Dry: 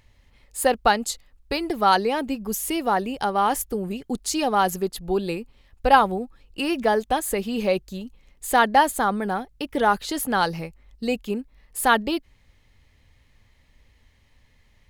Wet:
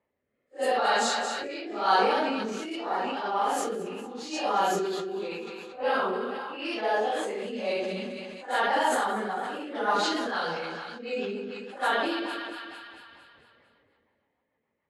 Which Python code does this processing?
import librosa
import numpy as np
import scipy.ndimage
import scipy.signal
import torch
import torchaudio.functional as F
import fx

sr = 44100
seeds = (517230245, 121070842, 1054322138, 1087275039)

p1 = fx.phase_scramble(x, sr, seeds[0], window_ms=200)
p2 = fx.env_lowpass(p1, sr, base_hz=1000.0, full_db=-17.5)
p3 = fx.bandpass_edges(p2, sr, low_hz=380.0, high_hz=6900.0)
p4 = p3 + fx.echo_split(p3, sr, split_hz=1100.0, low_ms=133, high_ms=227, feedback_pct=52, wet_db=-13.0, dry=0)
p5 = fx.rotary_switch(p4, sr, hz=0.85, then_hz=6.7, switch_at_s=7.48)
p6 = fx.sustainer(p5, sr, db_per_s=22.0)
y = F.gain(torch.from_numpy(p6), -4.0).numpy()